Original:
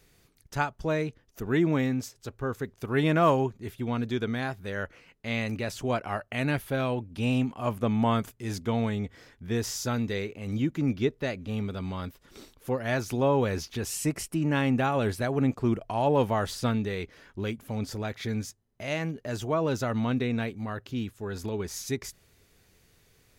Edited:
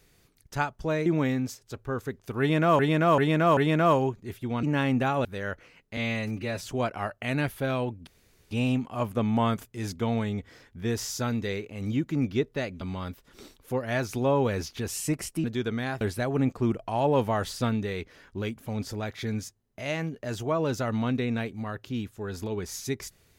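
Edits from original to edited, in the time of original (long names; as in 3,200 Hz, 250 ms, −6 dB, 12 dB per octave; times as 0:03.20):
0:01.06–0:01.60: remove
0:02.94–0:03.33: repeat, 4 plays
0:04.00–0:04.57: swap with 0:14.41–0:15.03
0:05.29–0:05.73: time-stretch 1.5×
0:07.17: splice in room tone 0.44 s
0:11.47–0:11.78: remove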